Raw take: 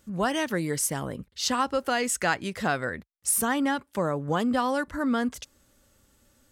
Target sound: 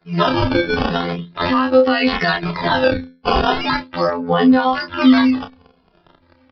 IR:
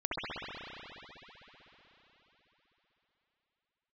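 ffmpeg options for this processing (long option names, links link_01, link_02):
-filter_complex "[0:a]afftfilt=real='re*pow(10,8/40*sin(2*PI*(1.4*log(max(b,1)*sr/1024/100)/log(2)-(-2.8)*(pts-256)/sr)))':imag='im*pow(10,8/40*sin(2*PI*(1.4*log(max(b,1)*sr/1024/100)/log(2)-(-2.8)*(pts-256)/sr)))':win_size=1024:overlap=0.75,bandreject=frequency=590:width=12,agate=range=-33dB:threshold=-58dB:ratio=3:detection=peak,highpass=65,bandreject=frequency=60:width_type=h:width=6,bandreject=frequency=120:width_type=h:width=6,bandreject=frequency=180:width_type=h:width=6,bandreject=frequency=240:width_type=h:width=6,bandreject=frequency=300:width_type=h:width=6,bandreject=frequency=360:width_type=h:width=6,bandreject=frequency=420:width_type=h:width=6,bandreject=frequency=480:width_type=h:width=6,bandreject=frequency=540:width_type=h:width=6,afftfilt=real='hypot(re,im)*cos(PI*b)':imag='0':win_size=2048:overlap=0.75,acrusher=samples=13:mix=1:aa=0.000001:lfo=1:lforange=20.8:lforate=0.39,asplit=2[link_01][link_02];[link_02]adelay=31,volume=-8dB[link_03];[link_01][link_03]amix=inputs=2:normalize=0,aresample=11025,aresample=44100,alimiter=level_in=16.5dB:limit=-1dB:release=50:level=0:latency=1,asplit=2[link_04][link_05];[link_05]adelay=2.4,afreqshift=-0.85[link_06];[link_04][link_06]amix=inputs=2:normalize=1,volume=2dB"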